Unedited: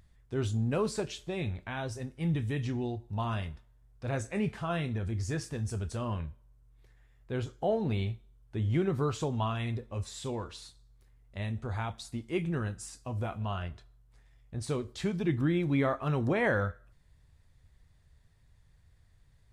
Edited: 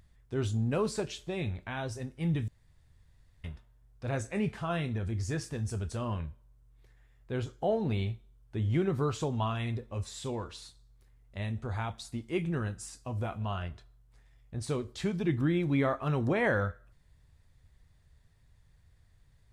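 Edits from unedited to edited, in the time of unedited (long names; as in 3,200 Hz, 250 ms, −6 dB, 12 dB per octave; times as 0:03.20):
0:02.48–0:03.44: fill with room tone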